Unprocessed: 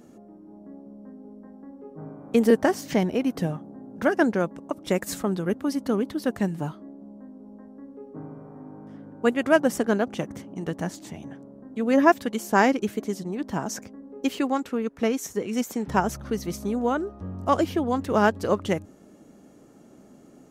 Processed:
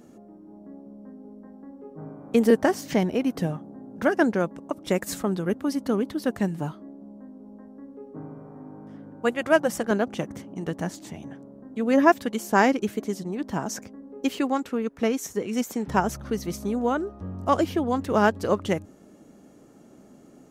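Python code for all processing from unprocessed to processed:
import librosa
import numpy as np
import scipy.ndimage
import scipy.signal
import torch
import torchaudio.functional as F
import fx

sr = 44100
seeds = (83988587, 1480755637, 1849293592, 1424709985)

y = fx.chain(x, sr, fx.peak_eq(hz=260.0, db=-12.5, octaves=0.2),
    fx.notch(hz=420.0, q=6.1), at=(9.2, 9.91))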